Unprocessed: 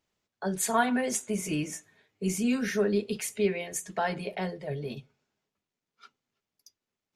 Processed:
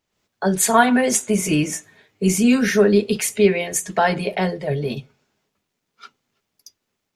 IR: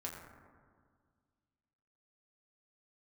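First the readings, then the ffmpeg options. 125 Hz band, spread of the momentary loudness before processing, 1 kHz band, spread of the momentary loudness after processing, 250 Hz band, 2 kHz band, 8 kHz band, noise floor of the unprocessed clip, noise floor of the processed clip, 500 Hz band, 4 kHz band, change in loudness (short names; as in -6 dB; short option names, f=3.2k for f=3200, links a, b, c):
+11.5 dB, 10 LU, +11.0 dB, 10 LU, +11.5 dB, +11.0 dB, +11.5 dB, under -85 dBFS, -78 dBFS, +11.5 dB, +11.5 dB, +11.5 dB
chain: -af "dynaudnorm=f=100:g=3:m=9dB,volume=2.5dB"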